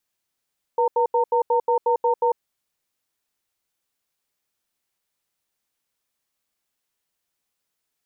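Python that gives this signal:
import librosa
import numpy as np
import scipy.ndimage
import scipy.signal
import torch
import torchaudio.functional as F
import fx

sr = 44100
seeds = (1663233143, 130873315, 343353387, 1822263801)

y = fx.cadence(sr, length_s=1.61, low_hz=483.0, high_hz=915.0, on_s=0.1, off_s=0.08, level_db=-19.0)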